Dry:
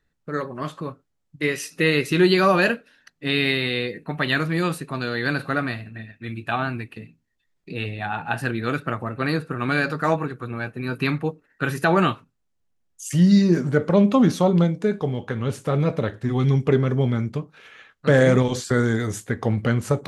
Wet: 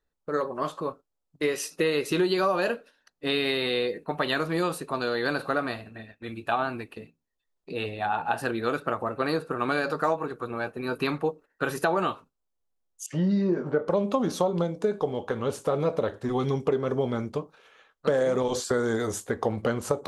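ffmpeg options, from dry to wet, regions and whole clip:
-filter_complex "[0:a]asettb=1/sr,asplit=3[s0][s1][s2];[s0]atrim=end=13.064[s3];[s1]atrim=start=13.06:end=13.88,asetpts=PTS-STARTPTS,afade=t=in:d=0.004:c=qsin,afade=t=out:st=0.816:d=0.004:c=qsin,highpass=120,lowpass=2200,asplit=2[s4][s5];[s5]adelay=26,volume=0.282[s6];[s4][s6]amix=inputs=2:normalize=0,atrim=end_sample=36162[s7];[s2]atrim=start=13.876[s8];[s3][s7]acrossfade=d=0.004:c1=hsin:c2=qsin[s9];[s9][s8]acrossfade=d=0.004:c1=qsin:c2=hsin,agate=range=0.447:threshold=0.00794:ratio=16:detection=peak,equalizer=f=125:t=o:w=1:g=-11,equalizer=f=250:t=o:w=1:g=-3,equalizer=f=500:t=o:w=1:g=4,equalizer=f=1000:t=o:w=1:g=4,equalizer=f=2000:t=o:w=1:g=-7,acompressor=threshold=0.0891:ratio=6"

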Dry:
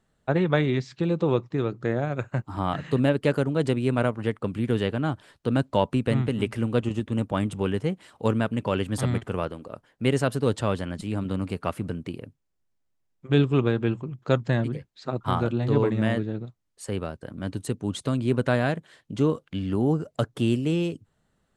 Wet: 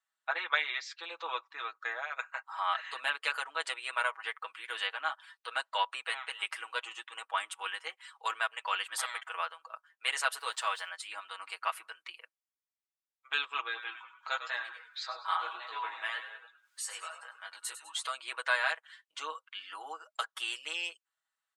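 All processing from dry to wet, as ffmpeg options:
-filter_complex "[0:a]asettb=1/sr,asplit=3[s0][s1][s2];[s0]atrim=end=10.384[s3];[s1]atrim=start=10.38:end=10.89,asetpts=PTS-STARTPTS,afade=t=in:d=0.004:c=qsin,afade=t=out:st=0.506:d=0.004:c=qsin,highpass=220,aeval=exprs='val(0)*gte(abs(val(0)),0.00376)':c=same[s4];[s2]atrim=start=10.886[s5];[s3][s4]acrossfade=d=0.004:c1=hsin:c2=qsin[s6];[s6][s5]acrossfade=d=0.004:c1=qsin:c2=hsin,asettb=1/sr,asplit=3[s7][s8][s9];[s7]atrim=end=13.634[s10];[s8]atrim=start=13.63:end=18.06,asetpts=PTS-STARTPTS,afade=t=in:d=0.004:c=qsin,afade=t=out:st=4.426:d=0.004:c=qsin,flanger=delay=16.5:depth=3.1:speed=1.1,acompressor=mode=upward:threshold=0.0282:ratio=2.5:attack=3.2:release=140:knee=2.83:detection=peak,asplit=7[s11][s12][s13][s14][s15][s16][s17];[s12]adelay=100,afreqshift=-48,volume=0.335[s18];[s13]adelay=200,afreqshift=-96,volume=0.178[s19];[s14]adelay=300,afreqshift=-144,volume=0.0944[s20];[s15]adelay=400,afreqshift=-192,volume=0.0501[s21];[s16]adelay=500,afreqshift=-240,volume=0.0263[s22];[s17]adelay=600,afreqshift=-288,volume=0.014[s23];[s11][s18][s19][s20][s21][s22][s23]amix=inputs=7:normalize=0,atrim=end_sample=195363[s24];[s9]atrim=start=18.056[s25];[s10][s24]acrossfade=d=0.004:c1=hsin:c2=qsin[s26];[s26][s25]acrossfade=d=0.004:c1=qsin:c2=hsin,highpass=f=1000:w=0.5412,highpass=f=1000:w=1.3066,afftdn=nr=13:nf=-58,aecho=1:1:6.2:0.83"

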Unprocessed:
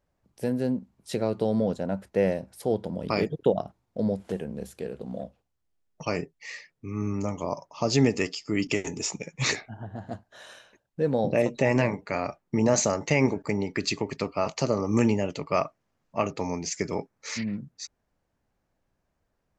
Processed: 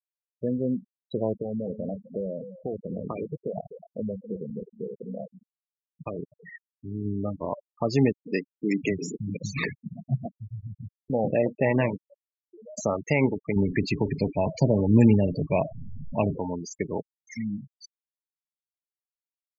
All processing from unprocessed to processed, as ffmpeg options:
-filter_complex "[0:a]asettb=1/sr,asplit=3[s0][s1][s2];[s0]atrim=end=1.334[s3];[s1]atrim=start=1.33:end=7.05,asetpts=PTS-STARTPTS,afade=t=in:d=0.004:c=qsin,afade=t=out:st=5.716:d=0.004:c=qsin,acompressor=threshold=0.0501:ratio=6:attack=3.2:release=140:knee=1:detection=peak,aecho=1:1:253|506|759:0.335|0.0971|0.0282,atrim=end_sample=252252[s4];[s2]atrim=start=7.046[s5];[s3][s4]acrossfade=d=0.004:c1=hsin:c2=qsin[s6];[s6][s5]acrossfade=d=0.004:c1=qsin:c2=hsin,asettb=1/sr,asplit=3[s7][s8][s9];[s7]atrim=end=8.124[s10];[s8]atrim=start=8.12:end=11.1,asetpts=PTS-STARTPTS,afade=t=in:d=0.004:c=qsin,afade=t=out:st=2.976:d=0.004:c=qsin,equalizer=f=160:t=o:w=1.1:g=9,acrossover=split=180|4100[s11][s12][s13];[s12]adelay=140[s14];[s11]adelay=710[s15];[s15][s14][s13]amix=inputs=3:normalize=0,atrim=end_sample=131418[s16];[s9]atrim=start=11.096[s17];[s10][s16]acrossfade=d=0.004:c1=hsin:c2=qsin[s18];[s18][s17]acrossfade=d=0.004:c1=qsin:c2=hsin,asettb=1/sr,asplit=3[s19][s20][s21];[s19]atrim=end=12.014[s22];[s20]atrim=start=12.01:end=12.78,asetpts=PTS-STARTPTS,afade=t=in:d=0.004:c=qsin,afade=t=out:st=0.766:d=0.004:c=qsin,highpass=520,highshelf=f=5000:g=-6.5,acompressor=threshold=0.0112:ratio=6:attack=3.2:release=140:knee=1:detection=peak[s23];[s21]atrim=start=12.776[s24];[s22][s23]acrossfade=d=0.004:c1=hsin:c2=qsin[s25];[s25][s24]acrossfade=d=0.004:c1=qsin:c2=hsin,asettb=1/sr,asplit=3[s26][s27][s28];[s26]atrim=end=13.564[s29];[s27]atrim=start=13.56:end=16.38,asetpts=PTS-STARTPTS,afade=t=in:d=0.004:c=qsin,afade=t=out:st=2.816:d=0.004:c=qsin,aeval=exprs='val(0)+0.5*0.0211*sgn(val(0))':c=same,asuperstop=centerf=1300:order=8:qfactor=2.7,bass=f=250:g=8,treble=f=4000:g=0[s30];[s28]atrim=start=16.376[s31];[s29][s30]acrossfade=d=0.004:c1=hsin:c2=qsin[s32];[s32][s31]acrossfade=d=0.004:c1=qsin:c2=hsin,afftfilt=real='re*gte(hypot(re,im),0.0631)':imag='im*gte(hypot(re,im),0.0631)':win_size=1024:overlap=0.75,acrossover=split=3100[s33][s34];[s34]acompressor=threshold=0.0158:ratio=4:attack=1:release=60[s35];[s33][s35]amix=inputs=2:normalize=0"

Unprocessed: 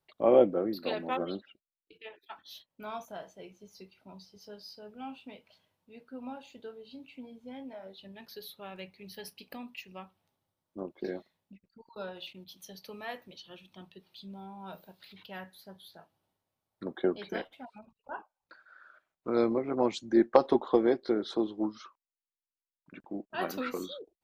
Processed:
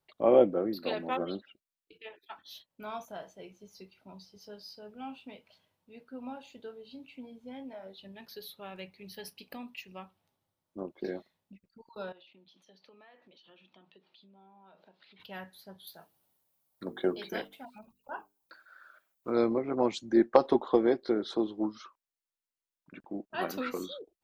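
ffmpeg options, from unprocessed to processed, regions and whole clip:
-filter_complex "[0:a]asettb=1/sr,asplit=3[s0][s1][s2];[s0]atrim=end=12.124[s3];[s1]atrim=start=12.12:end=15.2,asetpts=PTS-STARTPTS,afade=t=in:d=0.004:c=qsin,afade=t=out:st=3.076:d=0.004:c=qsin,acompressor=threshold=0.00224:ratio=12:attack=3.2:release=140:knee=1:detection=peak,highpass=240,lowpass=3600[s4];[s2]atrim=start=15.196[s5];[s3][s4]acrossfade=d=0.004:c1=hsin:c2=qsin[s6];[s6][s5]acrossfade=d=0.004:c1=qsin:c2=hsin,asettb=1/sr,asplit=3[s7][s8][s9];[s7]atrim=end=15.874[s10];[s8]atrim=start=15.87:end=19.32,asetpts=PTS-STARTPTS,afade=t=in:d=0.004:c=qsin,afade=t=out:st=3.446:d=0.004:c=qsin,aemphasis=mode=production:type=50fm,bandreject=f=50:t=h:w=6,bandreject=f=100:t=h:w=6,bandreject=f=150:t=h:w=6,bandreject=f=200:t=h:w=6,bandreject=f=250:t=h:w=6,bandreject=f=300:t=h:w=6,bandreject=f=350:t=h:w=6,bandreject=f=400:t=h:w=6,bandreject=f=450:t=h:w=6[s11];[s9]atrim=start=19.316[s12];[s10][s11]acrossfade=d=0.004:c1=hsin:c2=qsin[s13];[s13][s12]acrossfade=d=0.004:c1=qsin:c2=hsin"

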